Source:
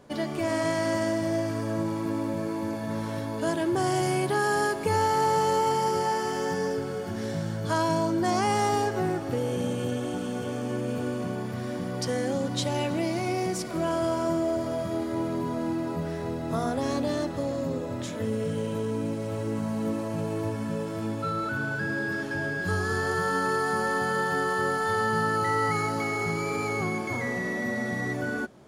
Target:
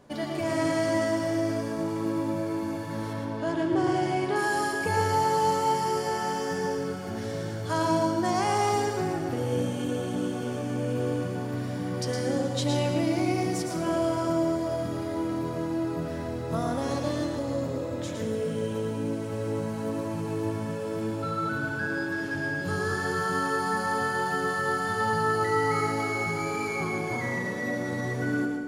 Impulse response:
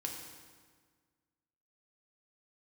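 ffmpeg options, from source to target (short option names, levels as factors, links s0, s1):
-filter_complex "[0:a]asettb=1/sr,asplit=3[s0][s1][s2];[s0]atrim=end=3.134[s3];[s1]atrim=start=3.13:end=4.36,asetpts=PTS-STARTPTS,afade=t=in:d=0.004:c=qsin,afade=t=out:st=1.226:d=0.004:c=qsin,adynamicsmooth=sensitivity=1.5:basefreq=4300[s4];[s2]atrim=start=4.356[s5];[s3][s4]acrossfade=d=0.004:c1=hsin:c2=qsin[s6];[s6][s5]acrossfade=d=0.004:c1=qsin:c2=hsin,flanger=delay=1:depth=8.5:regen=-81:speed=0.12:shape=triangular,asplit=2[s7][s8];[1:a]atrim=start_sample=2205,adelay=112[s9];[s8][s9]afir=irnorm=-1:irlink=0,volume=0.708[s10];[s7][s10]amix=inputs=2:normalize=0,volume=1.33"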